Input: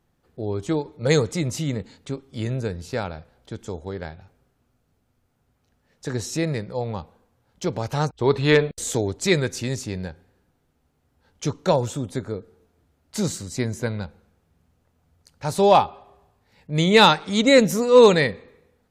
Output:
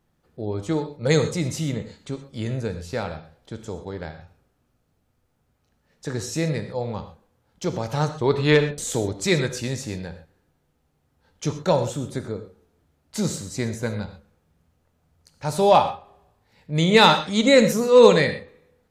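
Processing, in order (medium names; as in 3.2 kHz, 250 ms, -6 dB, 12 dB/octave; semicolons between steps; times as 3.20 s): gated-style reverb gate 150 ms flat, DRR 8 dB; trim -1 dB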